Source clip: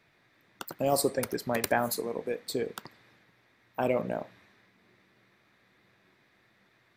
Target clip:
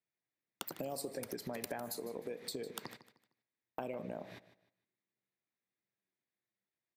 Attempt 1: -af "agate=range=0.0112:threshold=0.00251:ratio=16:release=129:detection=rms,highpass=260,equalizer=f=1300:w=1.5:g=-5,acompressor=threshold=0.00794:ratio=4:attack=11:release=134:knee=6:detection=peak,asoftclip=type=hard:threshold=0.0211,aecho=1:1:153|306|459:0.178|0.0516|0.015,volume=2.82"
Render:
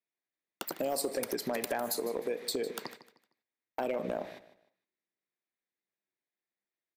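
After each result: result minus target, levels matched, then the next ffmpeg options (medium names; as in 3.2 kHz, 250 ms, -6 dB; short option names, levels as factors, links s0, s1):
compression: peak gain reduction -9.5 dB; 125 Hz band -8.0 dB
-af "agate=range=0.0112:threshold=0.00251:ratio=16:release=129:detection=rms,highpass=260,equalizer=f=1300:w=1.5:g=-5,acompressor=threshold=0.002:ratio=4:attack=11:release=134:knee=6:detection=peak,asoftclip=type=hard:threshold=0.0211,aecho=1:1:153|306|459:0.178|0.0516|0.015,volume=2.82"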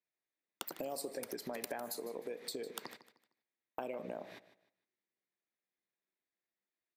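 125 Hz band -7.5 dB
-af "agate=range=0.0112:threshold=0.00251:ratio=16:release=129:detection=rms,highpass=110,equalizer=f=1300:w=1.5:g=-5,acompressor=threshold=0.002:ratio=4:attack=11:release=134:knee=6:detection=peak,asoftclip=type=hard:threshold=0.0211,aecho=1:1:153|306|459:0.178|0.0516|0.015,volume=2.82"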